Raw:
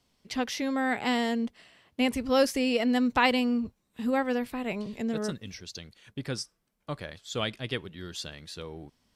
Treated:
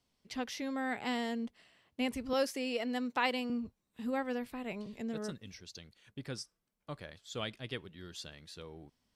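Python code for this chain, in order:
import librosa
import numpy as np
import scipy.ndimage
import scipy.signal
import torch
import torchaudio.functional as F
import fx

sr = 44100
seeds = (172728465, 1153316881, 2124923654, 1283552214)

y = fx.highpass(x, sr, hz=260.0, slope=12, at=(2.33, 3.5))
y = F.gain(torch.from_numpy(y), -8.0).numpy()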